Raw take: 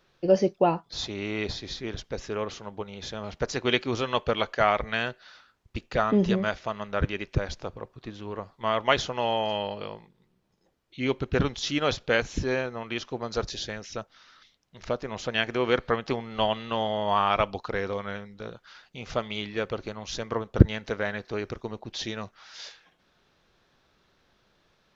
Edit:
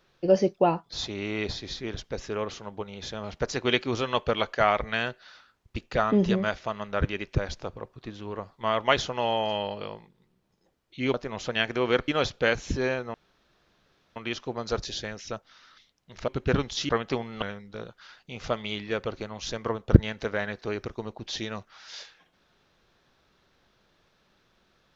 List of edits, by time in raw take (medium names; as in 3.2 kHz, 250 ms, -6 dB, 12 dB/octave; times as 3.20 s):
11.14–11.75 s: swap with 14.93–15.87 s
12.81 s: insert room tone 1.02 s
16.40–18.08 s: delete